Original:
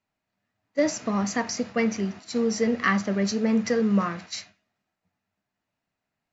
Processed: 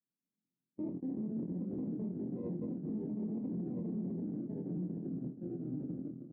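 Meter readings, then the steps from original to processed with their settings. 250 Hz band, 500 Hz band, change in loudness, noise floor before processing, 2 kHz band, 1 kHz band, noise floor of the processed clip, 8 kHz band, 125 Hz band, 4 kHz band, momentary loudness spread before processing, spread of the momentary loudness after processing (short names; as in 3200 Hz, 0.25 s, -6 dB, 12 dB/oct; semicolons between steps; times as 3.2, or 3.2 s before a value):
-10.5 dB, -17.5 dB, -14.0 dB, -84 dBFS, under -40 dB, under -30 dB, under -85 dBFS, n/a, -6.5 dB, under -40 dB, 9 LU, 4 LU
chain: minimum comb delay 6.5 ms; frequency shift +17 Hz; added harmonics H 4 -14 dB, 6 -11 dB, 7 -16 dB, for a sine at -10.5 dBFS; in parallel at -10 dB: sine folder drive 7 dB, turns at -10.5 dBFS; on the sum: sample-and-hold 29×; reverse; compressor 6:1, threshold -29 dBFS, peak gain reduction 13.5 dB; reverse; echoes that change speed 87 ms, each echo -3 st, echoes 3; Butterworth band-pass 220 Hz, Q 1.5; doubler 23 ms -5.5 dB; limiter -35 dBFS, peak gain reduction 13 dB; gain +3.5 dB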